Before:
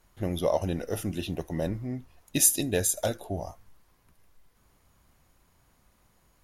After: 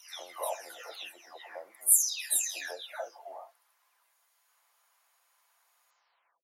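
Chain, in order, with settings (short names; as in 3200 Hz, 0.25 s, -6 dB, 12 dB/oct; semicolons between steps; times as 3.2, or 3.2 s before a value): spectral delay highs early, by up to 0.532 s; HPF 750 Hz 24 dB/oct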